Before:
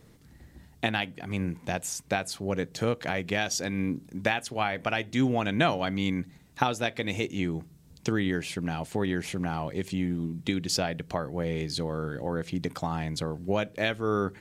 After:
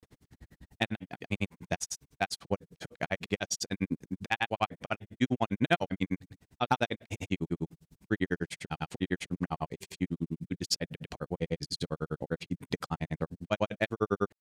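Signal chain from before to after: granulator 63 ms, grains 10 per s, pitch spread up and down by 0 st; overload inside the chain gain 16 dB; trim +2 dB

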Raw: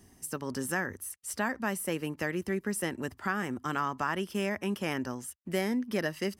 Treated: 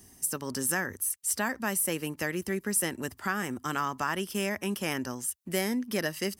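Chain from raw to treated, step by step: treble shelf 4.6 kHz +11.5 dB

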